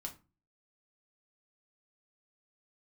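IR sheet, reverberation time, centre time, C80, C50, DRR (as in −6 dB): 0.30 s, 11 ms, 20.5 dB, 13.5 dB, 1.5 dB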